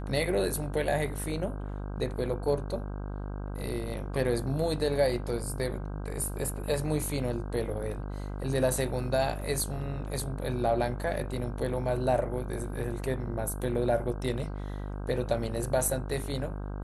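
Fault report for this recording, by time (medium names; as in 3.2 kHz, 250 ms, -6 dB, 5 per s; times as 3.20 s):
buzz 50 Hz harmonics 32 -36 dBFS
9.41 s: dropout 3 ms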